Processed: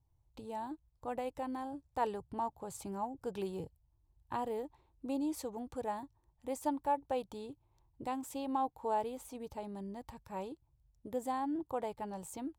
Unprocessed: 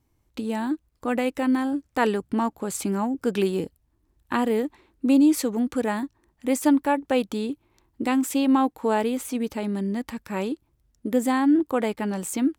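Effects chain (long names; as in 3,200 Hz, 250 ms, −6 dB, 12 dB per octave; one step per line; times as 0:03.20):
drawn EQ curve 140 Hz 0 dB, 220 Hz −18 dB, 900 Hz −3 dB, 1,300 Hz −15 dB, 2,100 Hz −18 dB, 3,700 Hz −13 dB
level −3.5 dB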